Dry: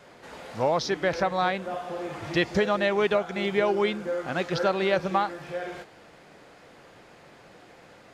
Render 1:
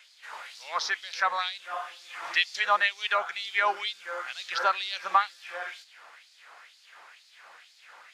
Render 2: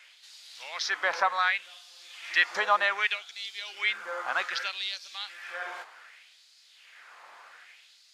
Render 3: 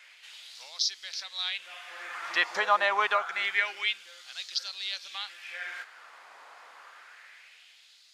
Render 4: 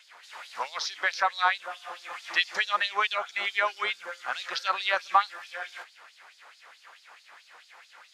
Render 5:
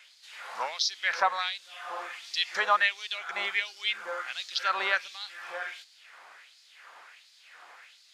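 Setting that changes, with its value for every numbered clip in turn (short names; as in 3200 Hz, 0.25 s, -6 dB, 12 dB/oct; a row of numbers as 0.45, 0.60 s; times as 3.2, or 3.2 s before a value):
LFO high-pass, rate: 2.1, 0.65, 0.27, 4.6, 1.4 Hz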